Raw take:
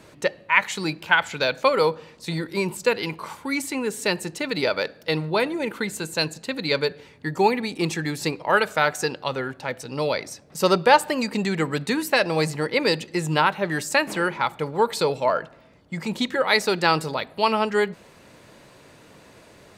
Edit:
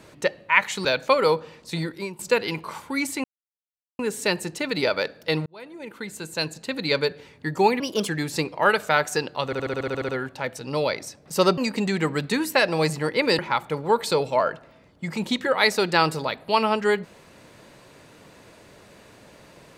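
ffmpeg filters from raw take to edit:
-filter_complex "[0:a]asplit=18[a][b][c][d][e][f][g][h][i][j][k][l][m][n][o][p][q][r];[a]atrim=end=0.852[s];[b]atrim=start=1.398:end=2.74,asetpts=PTS-STARTPTS,afade=t=out:st=0.952:d=0.39:silence=0.112202[t];[c]atrim=start=2.74:end=3.79,asetpts=PTS-STARTPTS,afade=t=in:d=0.004:c=hsin:silence=0.112202,afade=t=out:st=1.046:d=0.004:c=hsin,apad=pad_dur=0.75[u];[d]atrim=start=3.79:end=5.26,asetpts=PTS-STARTPTS,afade=t=in:d=0.004:c=hsin,afade=t=out:st=1.466:d=0.004:c=hsin[v];[e]atrim=start=5.26:end=7.604,asetpts=PTS-STARTPTS,afade=t=in:d=1.33[w];[f]atrim=start=7.6:end=7.96,asetpts=PTS-STARTPTS,asetrate=55566,aresample=44100[x];[g]atrim=start=7.956:end=9.402[y];[h]atrim=start=9.328:end=9.402[z];[i]atrim=start=9.328:end=9.402[aa];[j]atrim=start=9.328:end=9.402[ab];[k]atrim=start=9.328:end=9.402[ac];[l]atrim=start=9.328:end=9.402[ad];[m]atrim=start=9.328:end=9.402[ae];[n]atrim=start=9.328:end=9.402[af];[o]atrim=start=9.328:end=9.402[ag];[p]atrim=start=9.328:end=10.822[ah];[q]atrim=start=11.148:end=12.962[ai];[r]atrim=start=14.278[aj];[t][u][v][w]concat=n=4:v=0:a=1[ak];[s][ak]acrossfade=d=0.004:c1=hsin:c2=hsin[al];[al][x]acrossfade=d=0.004:c1=hsin:c2=hsin[am];[am][y]acrossfade=d=0.004:c1=hsin:c2=hsin[an];[an][z]acrossfade=d=0.004:c1=hsin:c2=hsin[ao];[ao][aa]acrossfade=d=0.004:c1=hsin:c2=hsin[ap];[ap][ab]acrossfade=d=0.004:c1=hsin:c2=hsin[aq];[aq][ac]acrossfade=d=0.004:c1=hsin:c2=hsin[ar];[ar][ad]acrossfade=d=0.004:c1=hsin:c2=hsin[as];[as][ae]acrossfade=d=0.004:c1=hsin:c2=hsin[at];[at][af]acrossfade=d=0.004:c1=hsin:c2=hsin[au];[au][ag]acrossfade=d=0.004:c1=hsin:c2=hsin[av];[av][ah]acrossfade=d=0.004:c1=hsin:c2=hsin[aw];[aw][ai]acrossfade=d=0.004:c1=hsin:c2=hsin[ax];[ax][aj]acrossfade=d=0.004:c1=hsin:c2=hsin"

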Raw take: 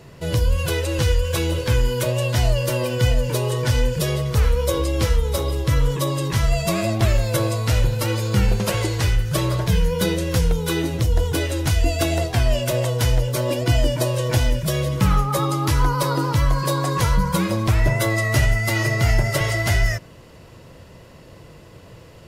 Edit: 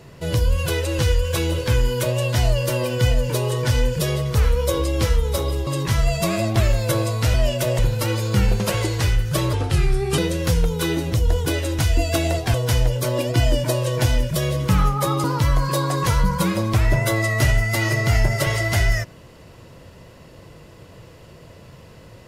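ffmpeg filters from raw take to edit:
-filter_complex "[0:a]asplit=8[a][b][c][d][e][f][g][h];[a]atrim=end=5.672[i];[b]atrim=start=6.118:end=7.792[j];[c]atrim=start=12.408:end=12.862[k];[d]atrim=start=7.788:end=9.534[l];[e]atrim=start=9.53:end=10.05,asetpts=PTS-STARTPTS,asetrate=35280,aresample=44100[m];[f]atrim=start=10.046:end=12.412[n];[g]atrim=start=12.858:end=15.562[o];[h]atrim=start=16.178[p];[i][j]acrossfade=d=0.004:c1=hsin:c2=hsin[q];[q][k]acrossfade=d=0.004:c1=hsin:c2=hsin[r];[r][l]acrossfade=d=0.004:c1=hsin:c2=hsin[s];[s][m]acrossfade=d=0.004:c1=hsin:c2=hsin[t];[t][n]acrossfade=d=0.004:c1=hsin:c2=hsin[u];[u][o]acrossfade=d=0.004:c1=hsin:c2=hsin[v];[v][p]acrossfade=d=0.004:c1=hsin:c2=hsin"

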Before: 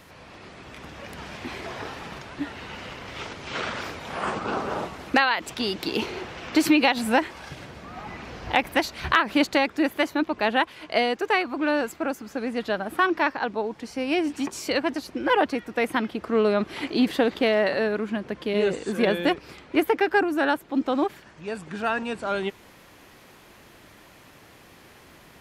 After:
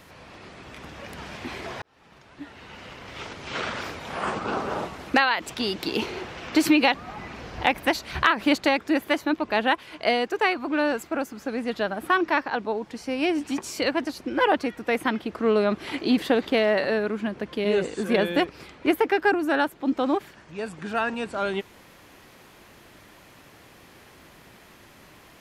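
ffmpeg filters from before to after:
-filter_complex "[0:a]asplit=3[a][b][c];[a]atrim=end=1.82,asetpts=PTS-STARTPTS,afade=t=out:st=1.816:d=0.004:c=hsin[d];[b]atrim=start=1.82:end=6.942,asetpts=PTS-STARTPTS,afade=t=in:d=1.71[e];[c]atrim=start=7.828[f];[d][e]concat=n=2:v=0:a=1[g];[g][f]acrossfade=d=0.004:c1=hsin:c2=hsin"

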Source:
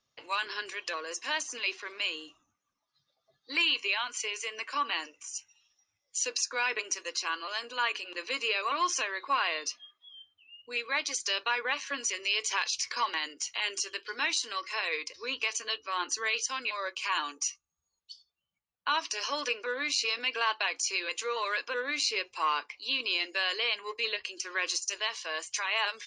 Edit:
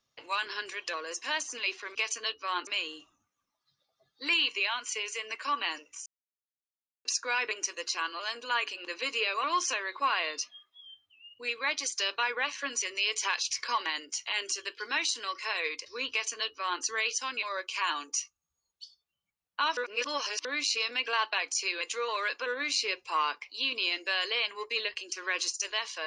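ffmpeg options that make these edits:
-filter_complex "[0:a]asplit=7[a][b][c][d][e][f][g];[a]atrim=end=1.952[h];[b]atrim=start=15.388:end=16.112[i];[c]atrim=start=1.948:end=5.34,asetpts=PTS-STARTPTS,afade=t=out:st=3.388:d=0.004:c=hsin[j];[d]atrim=start=5.34:end=6.33,asetpts=PTS-STARTPTS,volume=0[k];[e]atrim=start=6.33:end=19.052,asetpts=PTS-STARTPTS,afade=t=in:d=0.004:c=hsin[l];[f]atrim=start=19.048:end=19.732,asetpts=PTS-STARTPTS,areverse[m];[g]atrim=start=19.728[n];[h][i]acrossfade=d=0.004:c1=hsin:c2=hsin[o];[j][k][l]concat=n=3:v=0:a=1[p];[o][p]acrossfade=d=0.004:c1=hsin:c2=hsin[q];[q][m]acrossfade=d=0.004:c1=hsin:c2=hsin[r];[r][n]acrossfade=d=0.004:c1=hsin:c2=hsin"

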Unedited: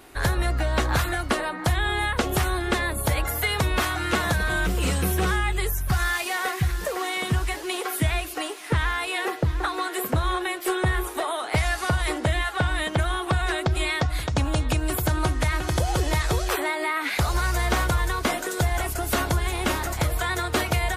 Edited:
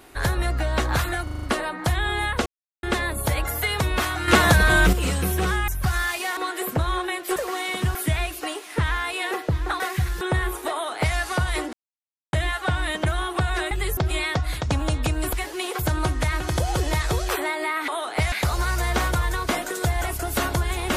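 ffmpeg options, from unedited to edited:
-filter_complex "[0:a]asplit=23[a][b][c][d][e][f][g][h][i][j][k][l][m][n][o][p][q][r][s][t][u][v][w];[a]atrim=end=1.272[x];[b]atrim=start=1.228:end=1.272[y];[c]atrim=start=1.228:end=1.272[z];[d]atrim=start=1.228:end=1.272[aa];[e]atrim=start=1.228:end=1.272[ab];[f]atrim=start=1.228:end=2.26,asetpts=PTS-STARTPTS,afade=t=out:st=1.028:d=0.004:c=hsin[ac];[g]atrim=start=2.26:end=2.63,asetpts=PTS-STARTPTS,volume=0[ad];[h]atrim=start=2.63:end=4.082,asetpts=PTS-STARTPTS,afade=t=in:d=0.004:c=hsin[ae];[i]atrim=start=4.078:end=4.732,asetpts=PTS-STARTPTS,volume=7.5dB[af];[j]atrim=start=4.728:end=5.482[ag];[k]atrim=start=5.738:end=6.432[ah];[l]atrim=start=9.738:end=10.732[ai];[m]atrim=start=6.838:end=7.432[aj];[n]atrim=start=7.888:end=9.742[ak];[o]atrim=start=6.428:end=6.842[al];[p]atrim=start=10.728:end=12.25,asetpts=PTS-STARTPTS,afade=t=out:st=1.518:d=0.004:c=hsin,apad=pad_dur=0.6[am];[q]atrim=start=12.25:end=13.632,asetpts=PTS-STARTPTS,afade=t=in:d=0.004:c=hsin[an];[r]atrim=start=5.478:end=5.742[ao];[s]atrim=start=13.628:end=14.992[ap];[t]atrim=start=7.428:end=7.892[aq];[u]atrim=start=14.988:end=17.082[ar];[v]atrim=start=11.238:end=11.682[as];[w]atrim=start=17.078[at];[x][y]acrossfade=d=0.004:c1=hsin:c2=hsin[au];[au][z]acrossfade=d=0.004:c1=hsin:c2=hsin[av];[av][aa]acrossfade=d=0.004:c1=hsin:c2=hsin[aw];[aw][ab]acrossfade=d=0.004:c1=hsin:c2=hsin[ax];[ac][ad][ae]concat=n=3:v=0:a=1[ay];[ax][ay]acrossfade=d=0.004:c1=hsin:c2=hsin[az];[az][af]acrossfade=d=0.004:c1=hsin:c2=hsin[ba];[ba][ag]acrossfade=d=0.004:c1=hsin:c2=hsin[bb];[bb][ah]acrossfade=d=0.004:c1=hsin:c2=hsin[bc];[bc][ai]acrossfade=d=0.004:c1=hsin:c2=hsin[bd];[bd][aj]acrossfade=d=0.004:c1=hsin:c2=hsin[be];[be][ak]acrossfade=d=0.004:c1=hsin:c2=hsin[bf];[bf][al]acrossfade=d=0.004:c1=hsin:c2=hsin[bg];[am][an]concat=n=2:v=0:a=1[bh];[bg][bh]acrossfade=d=0.004:c1=hsin:c2=hsin[bi];[bi][ao]acrossfade=d=0.004:c1=hsin:c2=hsin[bj];[bj][ap]acrossfade=d=0.004:c1=hsin:c2=hsin[bk];[bk][aq]acrossfade=d=0.004:c1=hsin:c2=hsin[bl];[bl][ar]acrossfade=d=0.004:c1=hsin:c2=hsin[bm];[bm][as]acrossfade=d=0.004:c1=hsin:c2=hsin[bn];[bn][at]acrossfade=d=0.004:c1=hsin:c2=hsin"

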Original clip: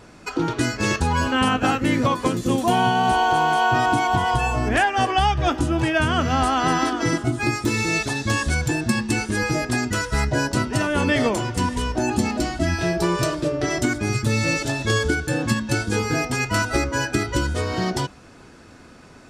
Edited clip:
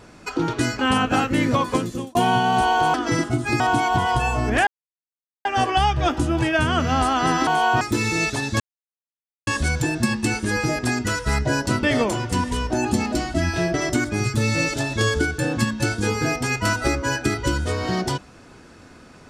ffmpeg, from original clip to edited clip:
-filter_complex "[0:a]asplit=11[a][b][c][d][e][f][g][h][i][j][k];[a]atrim=end=0.792[l];[b]atrim=start=1.298:end=2.66,asetpts=PTS-STARTPTS,afade=t=out:st=0.972:d=0.39[m];[c]atrim=start=2.66:end=3.452,asetpts=PTS-STARTPTS,afade=t=in:d=0.004:c=hsin[n];[d]atrim=start=6.878:end=7.542[o];[e]atrim=start=3.788:end=4.86,asetpts=PTS-STARTPTS,afade=t=out:st=1.068:d=0.004:c=hsin,apad=pad_dur=0.78[p];[f]atrim=start=4.86:end=6.882,asetpts=PTS-STARTPTS,afade=t=in:d=0.004:c=hsin[q];[g]atrim=start=3.448:end=3.792[r];[h]atrim=start=7.538:end=8.33,asetpts=PTS-STARTPTS,afade=t=out:st=0.788:d=0.004:c=hsin,apad=pad_dur=0.87[s];[i]atrim=start=8.33:end=10.692,asetpts=PTS-STARTPTS,afade=t=in:d=0.004:c=hsin[t];[j]atrim=start=11.078:end=12.992[u];[k]atrim=start=13.628[v];[m][n]concat=n=2:v=0:a=1[w];[l][w]acrossfade=d=0.004:c1=hsin:c2=hsin[x];[x][o]acrossfade=d=0.004:c1=hsin:c2=hsin[y];[p][q]concat=n=2:v=0:a=1[z];[y][z]acrossfade=d=0.004:c1=hsin:c2=hsin[aa];[aa][r]acrossfade=d=0.004:c1=hsin:c2=hsin[ab];[s][t]concat=n=2:v=0:a=1[ac];[ab][ac]acrossfade=d=0.004:c1=hsin:c2=hsin[ad];[ad][u]acrossfade=d=0.004:c1=hsin:c2=hsin[ae];[ae][v]acrossfade=d=0.004:c1=hsin:c2=hsin"

